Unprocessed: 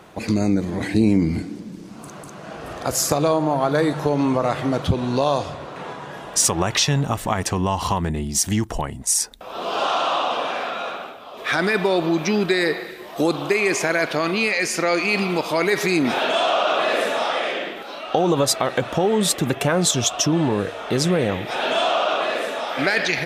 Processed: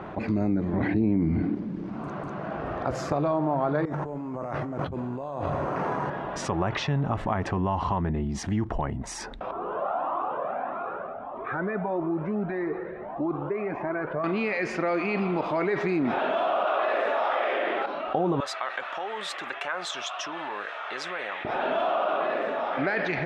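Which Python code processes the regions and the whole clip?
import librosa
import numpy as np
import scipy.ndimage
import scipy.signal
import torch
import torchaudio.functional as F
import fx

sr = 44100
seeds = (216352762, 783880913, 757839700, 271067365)

y = fx.chain(x, sr, fx.air_absorb(metres=130.0),
    fx.env_flatten(amount_pct=50), at=(0.73, 1.55))
y = fx.chain(y, sr, fx.over_compress(threshold_db=-32.0, ratio=-1.0),
    fx.resample_bad(factor=6, down='filtered', up='hold'), at=(3.85, 6.1))
y = fx.chain(y, sr, fx.lowpass(hz=1300.0, slope=12),
    fx.comb_cascade(direction='rising', hz=1.6), at=(9.51, 14.24))
y = fx.chain(y, sr, fx.highpass(hz=440.0, slope=12),
    fx.env_flatten(amount_pct=70), at=(16.65, 17.86))
y = fx.chain(y, sr, fx.highpass(hz=1400.0, slope=12),
    fx.high_shelf(hz=9500.0, db=8.0), at=(18.4, 21.45))
y = scipy.signal.sosfilt(scipy.signal.butter(2, 1600.0, 'lowpass', fs=sr, output='sos'), y)
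y = fx.notch(y, sr, hz=480.0, q=12.0)
y = fx.env_flatten(y, sr, amount_pct=50)
y = y * 10.0 ** (-8.0 / 20.0)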